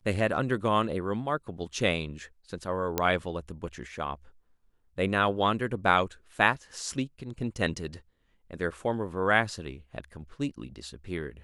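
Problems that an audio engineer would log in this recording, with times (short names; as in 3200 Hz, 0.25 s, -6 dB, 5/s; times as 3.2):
2.98 pop -10 dBFS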